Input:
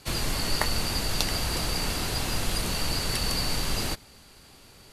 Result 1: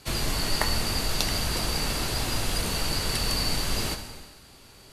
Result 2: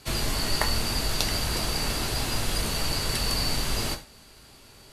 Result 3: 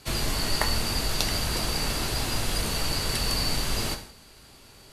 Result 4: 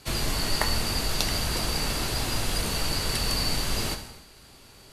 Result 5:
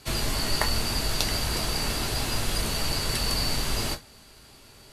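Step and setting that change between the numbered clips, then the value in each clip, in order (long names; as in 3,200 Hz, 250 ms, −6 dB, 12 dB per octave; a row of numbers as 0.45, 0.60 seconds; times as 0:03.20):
reverb whose tail is shaped and stops, gate: 500, 130, 210, 330, 80 milliseconds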